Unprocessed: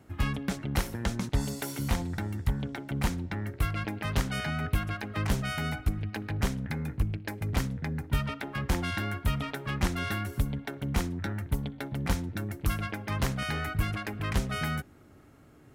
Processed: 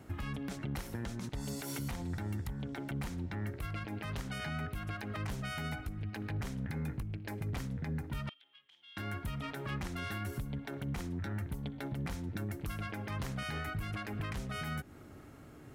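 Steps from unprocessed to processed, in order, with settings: compression 6:1, threshold -36 dBFS, peak gain reduction 14 dB; peak limiter -32.5 dBFS, peak gain reduction 9.5 dB; 8.29–8.97 s: band-pass filter 3.2 kHz, Q 13; trim +3 dB

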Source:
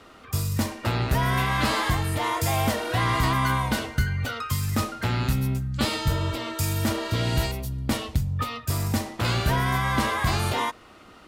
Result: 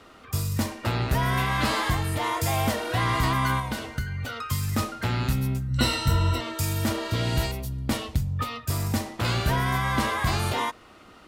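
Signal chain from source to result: 3.59–4.49 s: compression 2:1, threshold -29 dBFS, peak gain reduction 6.5 dB; 5.68–6.41 s: rippled EQ curve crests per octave 2, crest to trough 16 dB; trim -1 dB

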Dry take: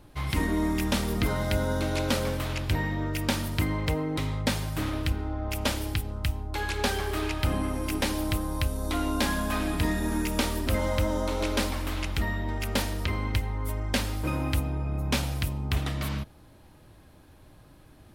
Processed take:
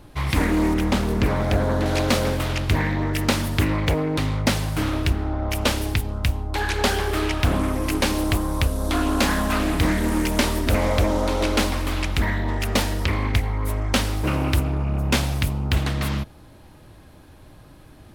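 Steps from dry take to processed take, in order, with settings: 0.74–1.86 s: treble shelf 2.9 kHz -8.5 dB; loudspeaker Doppler distortion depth 0.72 ms; trim +6.5 dB

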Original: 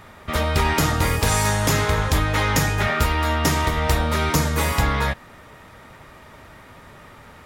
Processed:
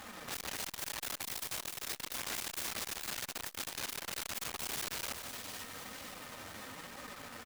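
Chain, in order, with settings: high-pass 62 Hz 24 dB/octave; bass shelf 170 Hz -3.5 dB; comb 3.9 ms, depth 50%; dynamic bell 900 Hz, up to +7 dB, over -41 dBFS, Q 2.9; in parallel at +3 dB: compression 6:1, threshold -35 dBFS, peak gain reduction 19 dB; on the sum: bit crusher 6-bit; flange 1 Hz, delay 3.3 ms, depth 7.3 ms, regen -8%; integer overflow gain 23.5 dB; flange 2 Hz, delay 1.2 ms, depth 7.6 ms, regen -71%; on a send: two-band feedback delay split 2.1 kHz, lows 150 ms, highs 503 ms, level -9 dB; on the sum: transformer saturation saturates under 1.4 kHz; trim -3.5 dB

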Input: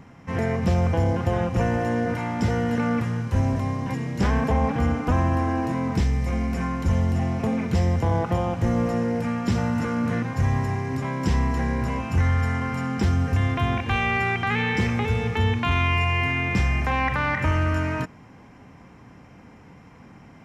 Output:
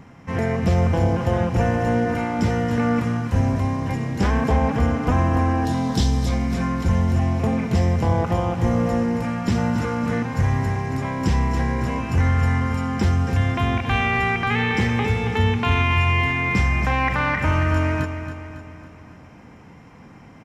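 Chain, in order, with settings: 5.65–6.29 s: resonant high shelf 2.9 kHz +6.5 dB, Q 3; feedback delay 276 ms, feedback 51%, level -10 dB; trim +2 dB

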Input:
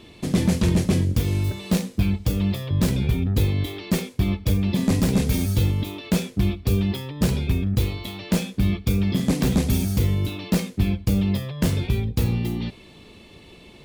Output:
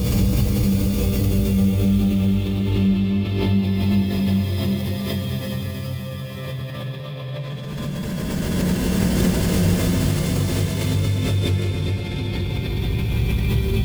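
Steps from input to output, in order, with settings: Paulstretch 16×, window 0.25 s, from 11.06 s; swell ahead of each attack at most 23 dB/s

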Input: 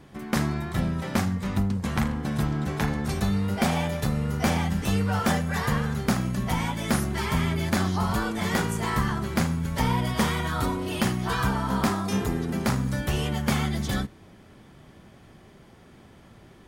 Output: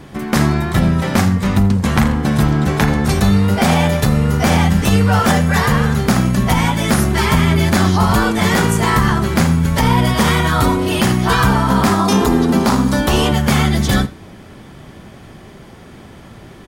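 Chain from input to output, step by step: 11.99–13.32 s: ten-band graphic EQ 125 Hz -9 dB, 250 Hz +6 dB, 1 kHz +7 dB, 2 kHz -4 dB, 4 kHz +4 dB; delay 84 ms -21 dB; loudness maximiser +15 dB; trim -2 dB

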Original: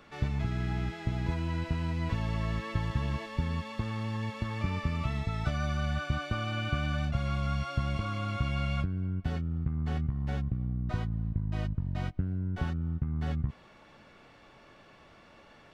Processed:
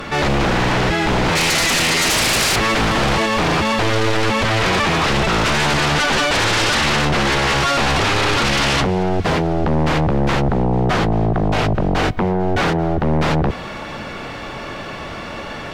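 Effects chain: 1.35–2.56 s: resonant high shelf 1.7 kHz +7.5 dB, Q 3; sine folder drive 20 dB, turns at -16.5 dBFS; thinning echo 221 ms, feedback 75%, level -22 dB; trim +3 dB

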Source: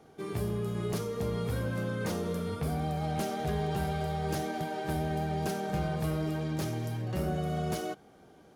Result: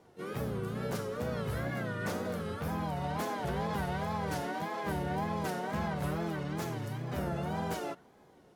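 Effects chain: harmony voices +4 st -4 dB; wow and flutter 140 cents; dynamic bell 1.4 kHz, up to +6 dB, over -49 dBFS, Q 0.92; trim -5 dB

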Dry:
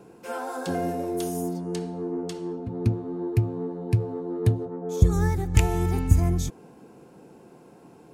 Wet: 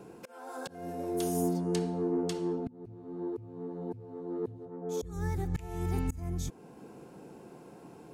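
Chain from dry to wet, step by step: slow attack 752 ms; de-hum 248.5 Hz, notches 2

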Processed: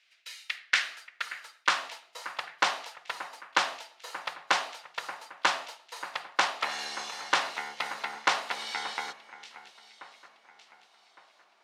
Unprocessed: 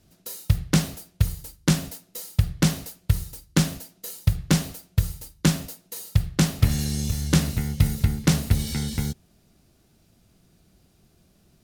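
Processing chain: band-pass 320–3400 Hz; high-pass sweep 2.2 kHz -> 920 Hz, 0.40–2.04 s; echo whose repeats swap between lows and highs 580 ms, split 2.4 kHz, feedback 60%, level -13.5 dB; trim +3.5 dB

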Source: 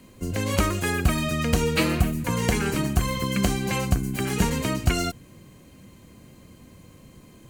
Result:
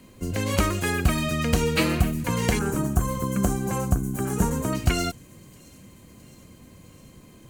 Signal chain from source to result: 2.59–4.73 s: high-order bell 3.1 kHz -13.5 dB; feedback echo behind a high-pass 664 ms, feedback 70%, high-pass 4.7 kHz, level -21.5 dB

